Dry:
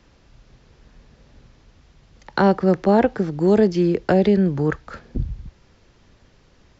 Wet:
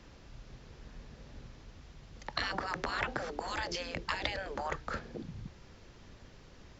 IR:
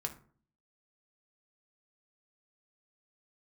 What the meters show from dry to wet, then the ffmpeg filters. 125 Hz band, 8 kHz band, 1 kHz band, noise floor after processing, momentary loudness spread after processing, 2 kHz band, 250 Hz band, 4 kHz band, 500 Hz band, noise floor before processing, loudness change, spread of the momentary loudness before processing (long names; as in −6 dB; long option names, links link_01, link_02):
−21.5 dB, can't be measured, −12.0 dB, −56 dBFS, 21 LU, −5.5 dB, −27.0 dB, −0.5 dB, −22.5 dB, −56 dBFS, −18.0 dB, 15 LU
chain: -af "afftfilt=real='re*lt(hypot(re,im),0.158)':imag='im*lt(hypot(re,im),0.158)':win_size=1024:overlap=0.75"